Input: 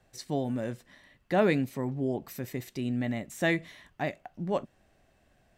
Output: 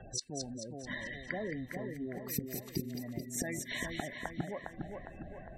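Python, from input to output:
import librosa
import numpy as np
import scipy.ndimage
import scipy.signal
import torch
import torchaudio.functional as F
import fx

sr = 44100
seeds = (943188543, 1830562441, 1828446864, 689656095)

p1 = fx.gate_flip(x, sr, shuts_db=-32.0, range_db=-28)
p2 = fx.over_compress(p1, sr, threshold_db=-54.0, ratio=-1.0)
p3 = p1 + F.gain(torch.from_numpy(p2), -0.5).numpy()
p4 = fx.spec_gate(p3, sr, threshold_db=-15, keep='strong')
p5 = fx.echo_split(p4, sr, split_hz=2000.0, low_ms=407, high_ms=219, feedback_pct=52, wet_db=-4.5)
y = F.gain(torch.from_numpy(p5), 9.0).numpy()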